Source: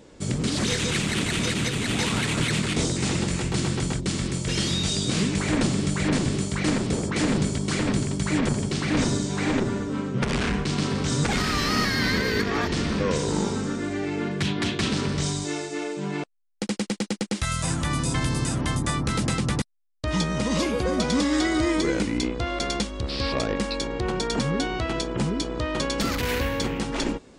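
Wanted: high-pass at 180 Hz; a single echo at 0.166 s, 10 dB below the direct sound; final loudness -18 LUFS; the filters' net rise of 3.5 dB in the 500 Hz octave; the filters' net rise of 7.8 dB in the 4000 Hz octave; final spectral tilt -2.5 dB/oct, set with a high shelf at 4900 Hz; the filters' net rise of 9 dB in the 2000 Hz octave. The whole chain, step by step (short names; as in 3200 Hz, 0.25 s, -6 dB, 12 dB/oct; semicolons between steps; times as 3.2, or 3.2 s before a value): HPF 180 Hz; bell 500 Hz +4 dB; bell 2000 Hz +8.5 dB; bell 4000 Hz +4 dB; high shelf 4900 Hz +6.5 dB; echo 0.166 s -10 dB; gain +2.5 dB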